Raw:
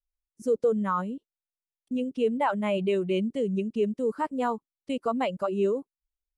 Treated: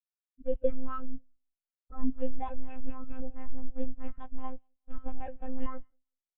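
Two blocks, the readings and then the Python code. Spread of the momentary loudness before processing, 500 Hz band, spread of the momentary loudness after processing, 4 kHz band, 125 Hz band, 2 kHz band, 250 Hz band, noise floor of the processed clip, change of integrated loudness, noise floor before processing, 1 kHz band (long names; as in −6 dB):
9 LU, −12.5 dB, 14 LU, below −20 dB, can't be measured, −18.0 dB, −11.0 dB, below −85 dBFS, −11.5 dB, below −85 dBFS, −13.0 dB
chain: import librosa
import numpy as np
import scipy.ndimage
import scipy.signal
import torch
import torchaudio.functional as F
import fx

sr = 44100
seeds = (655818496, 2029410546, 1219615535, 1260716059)

p1 = scipy.signal.sosfilt(scipy.signal.butter(2, 160.0, 'highpass', fs=sr, output='sos'), x)
p2 = fx.transient(p1, sr, attack_db=6, sustain_db=-4)
p3 = fx.fold_sine(p2, sr, drive_db=15, ceiling_db=-16.0)
p4 = p2 + (p3 * 10.0 ** (-4.5 / 20.0))
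p5 = fx.comb_fb(p4, sr, f0_hz=330.0, decay_s=0.67, harmonics='all', damping=0.0, mix_pct=80)
p6 = p5 + fx.echo_feedback(p5, sr, ms=185, feedback_pct=40, wet_db=-17, dry=0)
p7 = fx.lpc_monotone(p6, sr, seeds[0], pitch_hz=260.0, order=8)
p8 = fx.spectral_expand(p7, sr, expansion=2.5)
y = p8 * 10.0 ** (6.0 / 20.0)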